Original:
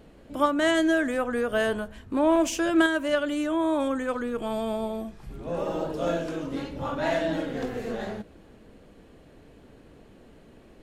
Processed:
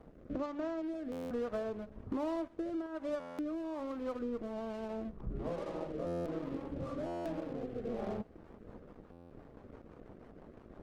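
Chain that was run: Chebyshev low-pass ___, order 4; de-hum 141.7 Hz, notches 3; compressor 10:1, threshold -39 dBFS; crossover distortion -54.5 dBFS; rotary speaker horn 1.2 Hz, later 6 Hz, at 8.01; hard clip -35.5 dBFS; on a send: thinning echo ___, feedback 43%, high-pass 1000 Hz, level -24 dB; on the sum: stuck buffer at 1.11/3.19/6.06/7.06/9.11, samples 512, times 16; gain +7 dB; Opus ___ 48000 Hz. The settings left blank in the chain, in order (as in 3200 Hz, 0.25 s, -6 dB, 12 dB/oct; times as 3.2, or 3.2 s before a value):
1200 Hz, 0.128 s, 24 kbps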